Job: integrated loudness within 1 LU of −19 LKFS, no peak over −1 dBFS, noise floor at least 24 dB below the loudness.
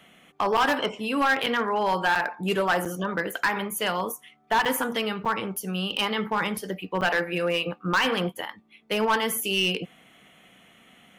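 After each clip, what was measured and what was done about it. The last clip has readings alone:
share of clipped samples 1.1%; peaks flattened at −17.0 dBFS; number of dropouts 7; longest dropout 6.4 ms; integrated loudness −25.5 LKFS; sample peak −17.0 dBFS; target loudness −19.0 LKFS
→ clipped peaks rebuilt −17 dBFS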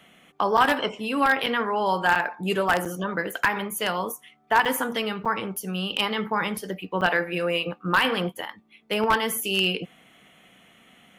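share of clipped samples 0.0%; number of dropouts 7; longest dropout 6.4 ms
→ repair the gap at 0:00.57/0:01.46/0:02.15/0:02.85/0:04.65/0:05.25/0:07.01, 6.4 ms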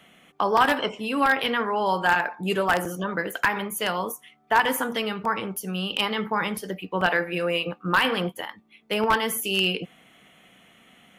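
number of dropouts 0; integrated loudness −24.5 LKFS; sample peak −8.0 dBFS; target loudness −19.0 LKFS
→ level +5.5 dB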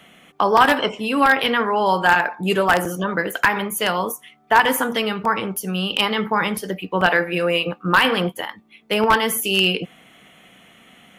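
integrated loudness −19.0 LKFS; sample peak −2.5 dBFS; background noise floor −53 dBFS

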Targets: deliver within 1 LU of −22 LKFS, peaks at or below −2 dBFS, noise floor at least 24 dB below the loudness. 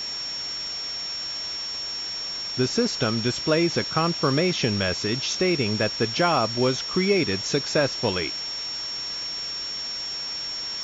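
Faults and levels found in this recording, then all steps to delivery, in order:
interfering tone 5,500 Hz; level of the tone −29 dBFS; background noise floor −32 dBFS; target noise floor −49 dBFS; integrated loudness −24.5 LKFS; sample peak −8.0 dBFS; target loudness −22.0 LKFS
→ notch filter 5,500 Hz, Q 30
broadband denoise 17 dB, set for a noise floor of −32 dBFS
level +2.5 dB

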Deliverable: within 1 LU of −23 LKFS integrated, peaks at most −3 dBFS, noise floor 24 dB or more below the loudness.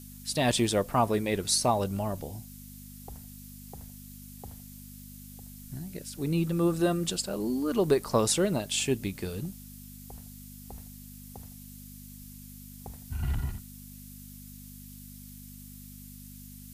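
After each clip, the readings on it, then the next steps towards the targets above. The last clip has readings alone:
mains hum 50 Hz; hum harmonics up to 250 Hz; level of the hum −45 dBFS; background noise floor −47 dBFS; target noise floor −53 dBFS; integrated loudness −28.5 LKFS; sample peak −11.5 dBFS; target loudness −23.0 LKFS
→ hum removal 50 Hz, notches 5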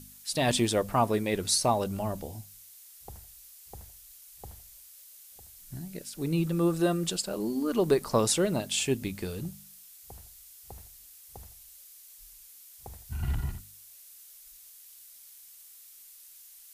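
mains hum none found; background noise floor −52 dBFS; target noise floor −53 dBFS
→ broadband denoise 6 dB, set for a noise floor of −52 dBFS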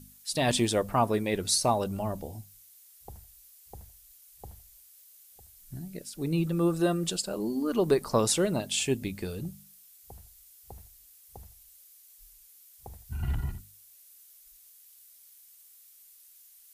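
background noise floor −56 dBFS; integrated loudness −29.0 LKFS; sample peak −12.0 dBFS; target loudness −23.0 LKFS
→ level +6 dB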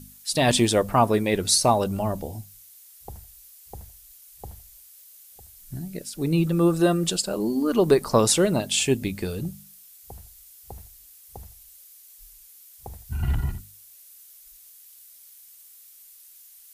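integrated loudness −23.0 LKFS; sample peak −6.0 dBFS; background noise floor −50 dBFS

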